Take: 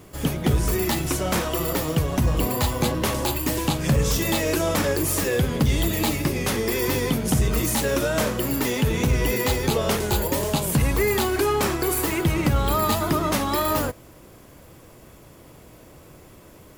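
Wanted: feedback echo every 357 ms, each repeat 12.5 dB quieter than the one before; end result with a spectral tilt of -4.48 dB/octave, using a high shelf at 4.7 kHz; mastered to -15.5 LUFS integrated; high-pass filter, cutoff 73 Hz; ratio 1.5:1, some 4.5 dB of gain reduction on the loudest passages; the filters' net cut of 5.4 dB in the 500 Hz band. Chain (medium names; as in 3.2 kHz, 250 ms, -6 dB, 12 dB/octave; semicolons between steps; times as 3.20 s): high-pass 73 Hz; peaking EQ 500 Hz -7 dB; treble shelf 4.7 kHz -4.5 dB; compression 1.5:1, threshold -30 dBFS; feedback delay 357 ms, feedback 24%, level -12.5 dB; trim +13 dB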